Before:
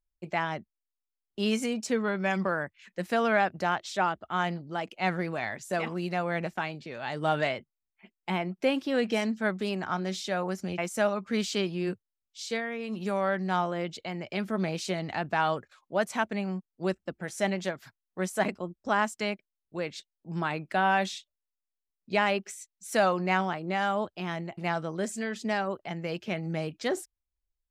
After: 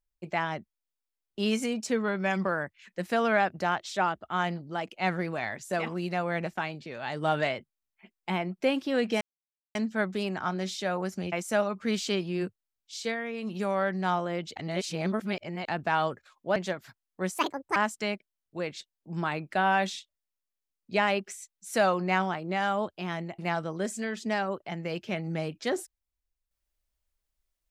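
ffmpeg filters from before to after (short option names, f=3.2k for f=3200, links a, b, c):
-filter_complex "[0:a]asplit=7[a][b][c][d][e][f][g];[a]atrim=end=9.21,asetpts=PTS-STARTPTS,afade=t=out:st=9.206:d=0.004:c=hsin,apad=pad_dur=0.54[h];[b]atrim=start=9.21:end=14.022,asetpts=PTS-STARTPTS,afade=t=in:d=0.004:c=hsin[i];[c]atrim=start=14.018:end=15.142,asetpts=PTS-STARTPTS,areverse[j];[d]atrim=start=15.138:end=16.022[k];[e]atrim=start=17.538:end=18.364[l];[f]atrim=start=18.36:end=18.95,asetpts=PTS-STARTPTS,asetrate=68355,aresample=44100,atrim=end_sample=16786,asetpts=PTS-STARTPTS[m];[g]atrim=start=18.946[n];[h][i]concat=n=2:v=0:a=1[o];[o][j]acrossfade=d=0.004:c1=hsin:c2=hsin[p];[p][k]acrossfade=d=0.004:c1=hsin:c2=hsin[q];[q][l]acrossfade=d=0.004:c1=hsin:c2=hsin[r];[r][m]acrossfade=d=0.004:c1=hsin:c2=hsin[s];[s][n]acrossfade=d=0.004:c1=hsin:c2=hsin"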